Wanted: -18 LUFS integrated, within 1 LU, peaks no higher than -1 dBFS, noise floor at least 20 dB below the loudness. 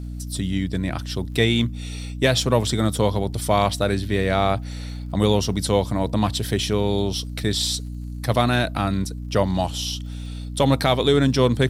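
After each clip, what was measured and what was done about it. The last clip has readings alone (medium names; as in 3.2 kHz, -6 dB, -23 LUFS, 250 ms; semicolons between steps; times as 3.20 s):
tick rate 45 per s; hum 60 Hz; highest harmonic 300 Hz; hum level -28 dBFS; loudness -22.0 LUFS; peak level -4.5 dBFS; loudness target -18.0 LUFS
-> de-click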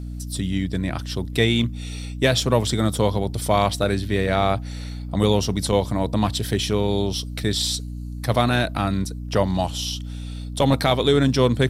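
tick rate 0.26 per s; hum 60 Hz; highest harmonic 300 Hz; hum level -29 dBFS
-> de-hum 60 Hz, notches 5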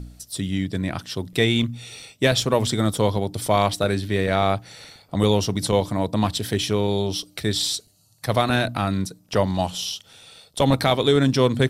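hum not found; loudness -22.5 LUFS; peak level -4.5 dBFS; loudness target -18.0 LUFS
-> trim +4.5 dB; peak limiter -1 dBFS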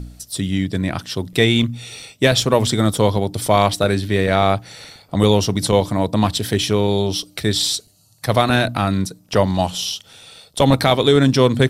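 loudness -18.0 LUFS; peak level -1.0 dBFS; noise floor -53 dBFS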